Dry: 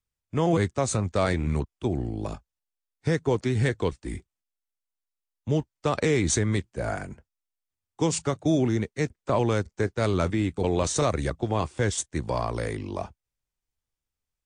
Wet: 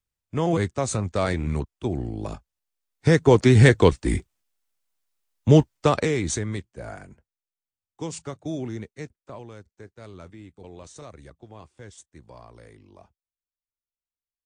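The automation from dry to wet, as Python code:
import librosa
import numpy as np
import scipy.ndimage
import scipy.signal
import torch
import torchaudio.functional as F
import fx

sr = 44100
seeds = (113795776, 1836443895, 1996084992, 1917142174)

y = fx.gain(x, sr, db=fx.line((2.25, 0.0), (3.52, 10.5), (5.74, 10.5), (6.1, -1.0), (6.92, -8.0), (8.92, -8.0), (9.48, -18.5)))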